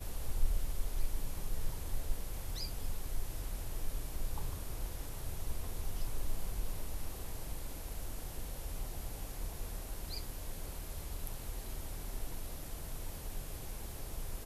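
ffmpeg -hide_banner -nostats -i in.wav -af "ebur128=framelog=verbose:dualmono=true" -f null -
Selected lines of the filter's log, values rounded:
Integrated loudness:
  I:         -40.8 LUFS
  Threshold: -50.8 LUFS
Loudness range:
  LRA:         2.3 LU
  Threshold: -61.0 LUFS
  LRA low:   -42.1 LUFS
  LRA high:  -39.9 LUFS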